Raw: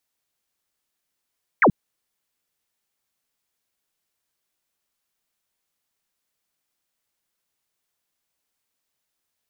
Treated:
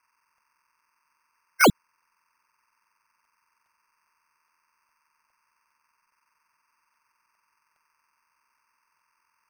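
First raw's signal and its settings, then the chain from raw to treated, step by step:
single falling chirp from 2,400 Hz, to 140 Hz, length 0.08 s sine, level −11 dB
hearing-aid frequency compression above 1,400 Hz 4 to 1
decimation without filtering 12×
regular buffer underruns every 0.41 s, samples 64, repeat, from 0:00.38

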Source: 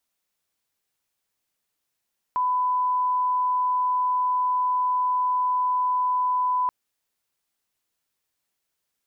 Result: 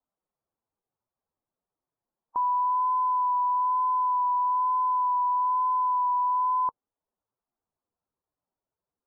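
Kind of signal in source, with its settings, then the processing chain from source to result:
line-up tone −20 dBFS 4.33 s
spectral magnitudes quantised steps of 15 dB
low-pass filter 1,100 Hz 24 dB per octave
pitch vibrato 1.1 Hz 18 cents

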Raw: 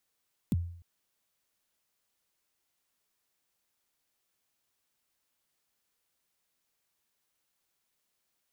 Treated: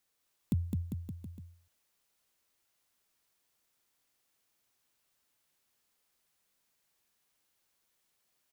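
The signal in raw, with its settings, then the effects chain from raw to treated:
synth kick length 0.30 s, from 270 Hz, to 86 Hz, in 29 ms, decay 0.60 s, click on, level −22 dB
bouncing-ball delay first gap 210 ms, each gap 0.9×, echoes 5

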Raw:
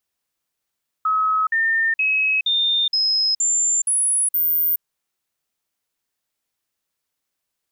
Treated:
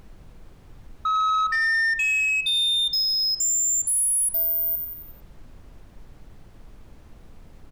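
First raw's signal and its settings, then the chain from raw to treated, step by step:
stepped sweep 1,280 Hz up, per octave 2, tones 8, 0.42 s, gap 0.05 s −16 dBFS
repeating echo 89 ms, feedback 54%, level −14 dB
background noise brown −44 dBFS
soft clipping −19 dBFS

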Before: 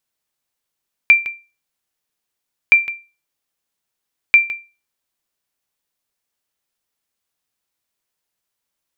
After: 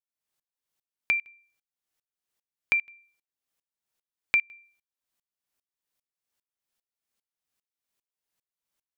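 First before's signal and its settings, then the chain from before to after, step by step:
ping with an echo 2,360 Hz, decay 0.30 s, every 1.62 s, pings 3, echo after 0.16 s, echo −15 dB −1.5 dBFS
downward compressor 2 to 1, threshold −24 dBFS
tremolo with a ramp in dB swelling 2.5 Hz, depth 26 dB

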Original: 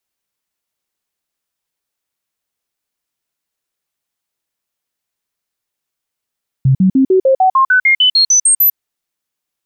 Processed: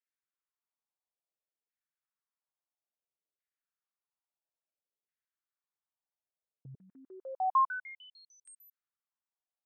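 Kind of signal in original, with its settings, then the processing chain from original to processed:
stepped sweep 133 Hz up, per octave 2, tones 14, 0.10 s, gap 0.05 s −6.5 dBFS
brickwall limiter −18.5 dBFS
auto-filter band-pass saw down 0.59 Hz 420–1,900 Hz
expander for the loud parts 1.5 to 1, over −43 dBFS

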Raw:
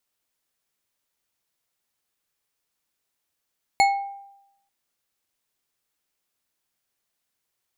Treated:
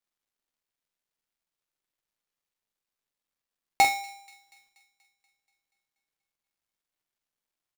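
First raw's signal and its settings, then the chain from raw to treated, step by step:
struck glass bar, lowest mode 795 Hz, decay 0.86 s, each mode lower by 5 dB, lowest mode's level −13 dB
gap after every zero crossing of 0.099 ms
double-tracking delay 46 ms −6 dB
delay with a high-pass on its return 240 ms, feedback 58%, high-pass 1,900 Hz, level −23.5 dB

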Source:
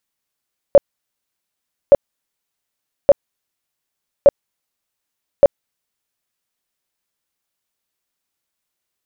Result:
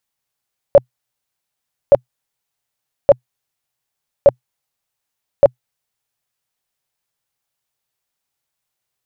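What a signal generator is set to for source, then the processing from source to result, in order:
tone bursts 565 Hz, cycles 16, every 1.17 s, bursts 5, −2.5 dBFS
thirty-one-band graphic EQ 125 Hz +9 dB, 200 Hz −4 dB, 315 Hz −5 dB, 800 Hz +4 dB

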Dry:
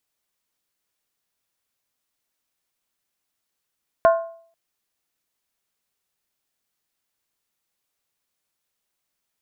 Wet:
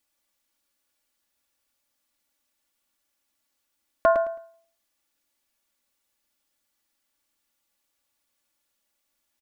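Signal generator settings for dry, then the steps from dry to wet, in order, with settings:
struck skin length 0.49 s, lowest mode 665 Hz, decay 0.53 s, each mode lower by 7 dB, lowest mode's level −9 dB
comb filter 3.5 ms, depth 72%
brickwall limiter −9 dBFS
repeating echo 108 ms, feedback 24%, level −7.5 dB

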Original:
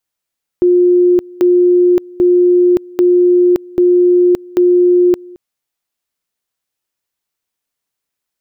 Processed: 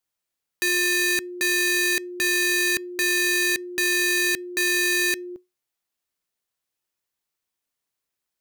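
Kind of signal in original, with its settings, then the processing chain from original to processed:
tone at two levels in turn 356 Hz −6 dBFS, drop 24.5 dB, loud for 0.57 s, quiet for 0.22 s, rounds 6
wrap-around overflow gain 12 dB
tuned comb filter 360 Hz, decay 0.21 s, harmonics odd, mix 40%

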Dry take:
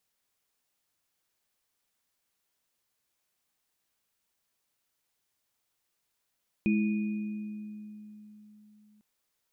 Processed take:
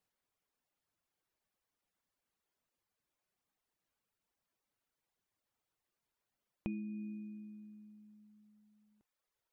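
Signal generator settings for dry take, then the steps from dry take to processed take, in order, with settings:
inharmonic partials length 2.35 s, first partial 211 Hz, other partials 327/2,470 Hz, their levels −7/−12 dB, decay 3.81 s, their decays 2.06/1.87 s, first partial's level −22.5 dB
reverb reduction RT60 0.96 s
high-shelf EQ 2,300 Hz −10.5 dB
downward compressor 6 to 1, threshold −38 dBFS

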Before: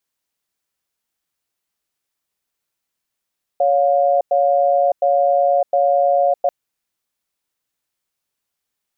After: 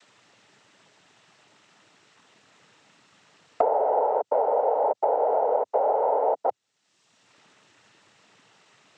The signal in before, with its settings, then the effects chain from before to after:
tone pair in a cadence 560 Hz, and 709 Hz, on 0.61 s, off 0.10 s, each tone −15 dBFS 2.89 s
brickwall limiter −16.5 dBFS
cochlear-implant simulation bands 12
multiband upward and downward compressor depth 100%

